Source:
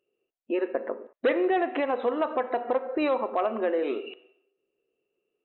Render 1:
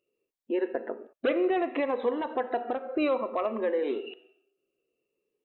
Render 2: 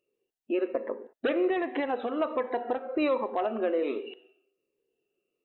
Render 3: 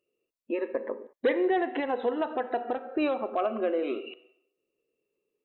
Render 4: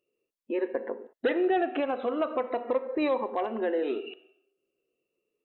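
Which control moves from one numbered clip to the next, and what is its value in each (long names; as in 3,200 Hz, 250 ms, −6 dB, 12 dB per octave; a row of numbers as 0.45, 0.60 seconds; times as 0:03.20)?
phaser whose notches keep moving one way, speed: 0.6, 1.3, 0.22, 0.39 Hertz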